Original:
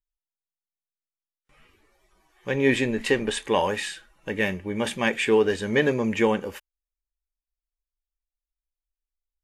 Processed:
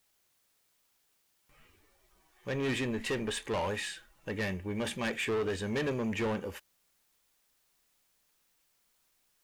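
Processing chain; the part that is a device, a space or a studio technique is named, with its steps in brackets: open-reel tape (soft clip -23 dBFS, distortion -8 dB; bell 89 Hz +5 dB 0.85 oct; white noise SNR 36 dB); gain -5 dB

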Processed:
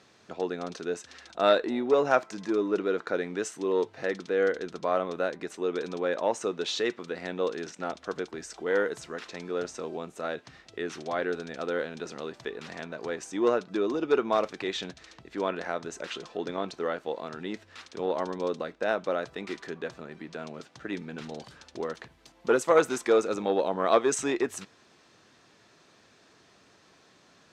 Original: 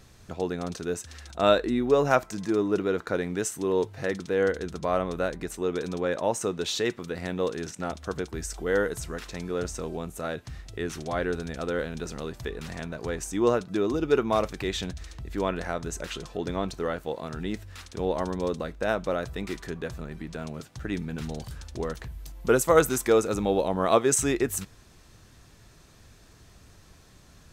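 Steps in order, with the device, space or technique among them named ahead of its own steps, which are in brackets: public-address speaker with an overloaded transformer (core saturation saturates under 620 Hz; BPF 270–5300 Hz)

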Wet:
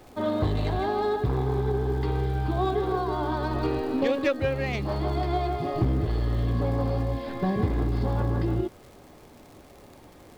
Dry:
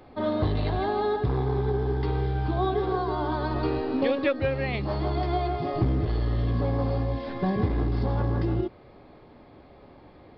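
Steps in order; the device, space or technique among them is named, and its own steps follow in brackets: record under a worn stylus (tracing distortion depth 0.038 ms; crackle 110/s -41 dBFS; pink noise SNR 33 dB)

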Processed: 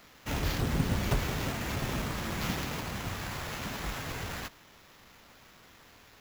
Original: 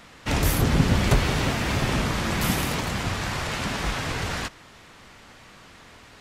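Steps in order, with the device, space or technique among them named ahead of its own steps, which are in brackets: early 8-bit sampler (sample-rate reducer 9000 Hz, jitter 0%; bit-crush 8-bit); gain -9 dB

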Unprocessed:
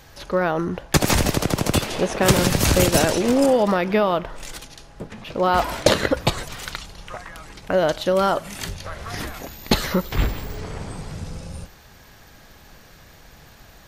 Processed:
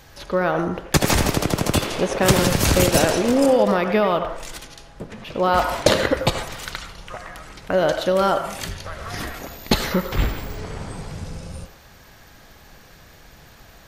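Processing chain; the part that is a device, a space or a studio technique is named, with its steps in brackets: filtered reverb send (on a send: HPF 450 Hz 12 dB/oct + LPF 3200 Hz + reverb RT60 0.60 s, pre-delay 74 ms, DRR 7 dB)

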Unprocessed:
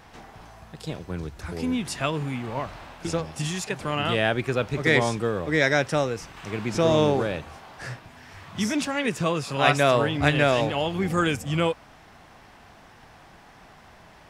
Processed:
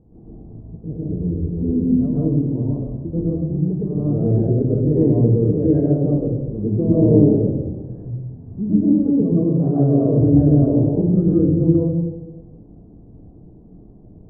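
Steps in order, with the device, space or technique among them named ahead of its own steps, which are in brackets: next room (LPF 400 Hz 24 dB/oct; reverb RT60 1.1 s, pre-delay 0.103 s, DRR -7.5 dB); gain +2.5 dB

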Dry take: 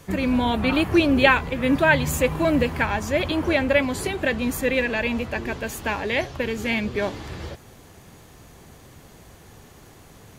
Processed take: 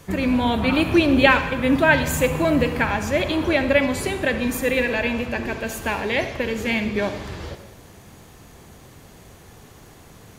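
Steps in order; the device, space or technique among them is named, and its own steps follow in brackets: saturated reverb return (on a send at -8 dB: reverb RT60 1.0 s, pre-delay 42 ms + soft clip -11.5 dBFS, distortion -19 dB); on the sum: gain +1 dB

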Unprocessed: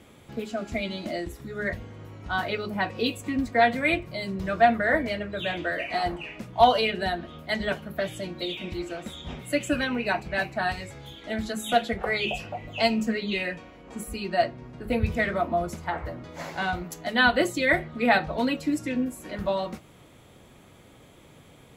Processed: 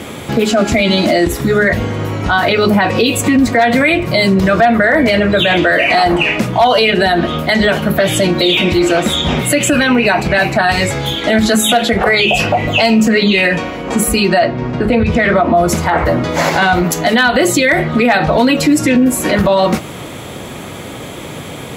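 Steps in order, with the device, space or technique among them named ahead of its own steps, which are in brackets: loud club master (compressor 2:1, threshold -28 dBFS, peak gain reduction 9.5 dB; hard clip -18 dBFS, distortion -31 dB; maximiser +28 dB); HPF 110 Hz 6 dB/oct; 14.39–15.55 air absorption 84 m; gain -2 dB

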